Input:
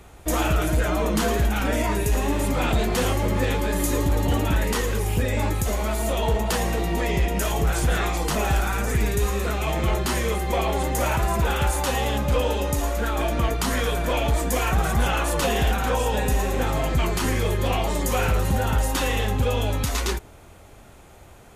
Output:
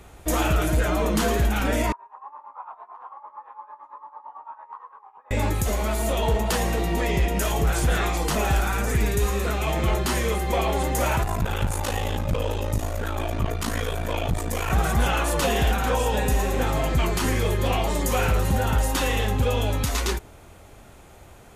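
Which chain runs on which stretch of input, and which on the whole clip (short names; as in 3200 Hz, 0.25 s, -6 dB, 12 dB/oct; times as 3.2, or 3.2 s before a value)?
1.92–5.31 Butterworth band-pass 1000 Hz, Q 3.6 + tremolo 8.9 Hz, depth 80%
11.23–14.7 bell 78 Hz +12 dB 0.29 oct + ring modulator 27 Hz + core saturation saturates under 150 Hz
whole clip: dry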